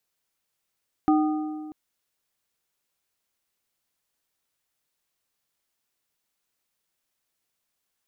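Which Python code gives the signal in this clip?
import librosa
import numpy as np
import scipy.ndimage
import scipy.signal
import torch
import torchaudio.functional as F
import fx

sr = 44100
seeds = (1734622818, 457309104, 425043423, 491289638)

y = fx.strike_metal(sr, length_s=0.64, level_db=-16.0, body='plate', hz=307.0, decay_s=1.83, tilt_db=6.0, modes=3)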